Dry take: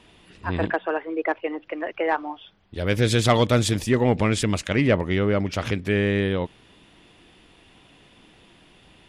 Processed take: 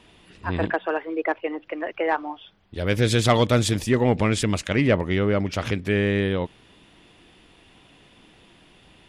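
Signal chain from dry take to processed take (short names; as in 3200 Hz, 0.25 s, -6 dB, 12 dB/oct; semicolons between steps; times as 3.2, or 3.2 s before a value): 0.8–1.21 high shelf 6000 Hz +11 dB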